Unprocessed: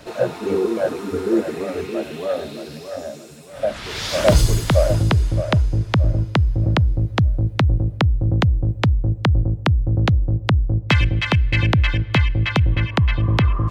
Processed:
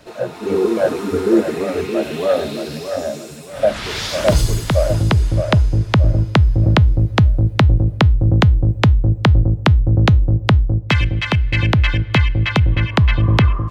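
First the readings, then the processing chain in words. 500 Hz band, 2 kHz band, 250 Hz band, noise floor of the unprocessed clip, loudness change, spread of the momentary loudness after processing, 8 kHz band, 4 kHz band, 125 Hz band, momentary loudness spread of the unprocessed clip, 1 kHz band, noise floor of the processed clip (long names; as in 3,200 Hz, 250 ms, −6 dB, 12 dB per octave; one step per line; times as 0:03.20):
+3.5 dB, +3.0 dB, +4.0 dB, −35 dBFS, +3.5 dB, 8 LU, +1.5 dB, +3.0 dB, +3.5 dB, 9 LU, +3.5 dB, −32 dBFS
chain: tuned comb filter 210 Hz, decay 0.29 s, harmonics all, mix 30%
automatic gain control gain up to 11.5 dB
level −1 dB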